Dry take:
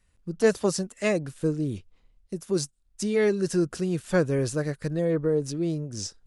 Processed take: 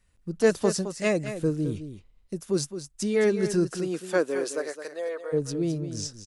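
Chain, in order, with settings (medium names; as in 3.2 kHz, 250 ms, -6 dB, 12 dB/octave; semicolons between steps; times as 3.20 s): 3.67–5.32 s: high-pass 190 Hz -> 650 Hz 24 dB/octave; on a send: delay 214 ms -10.5 dB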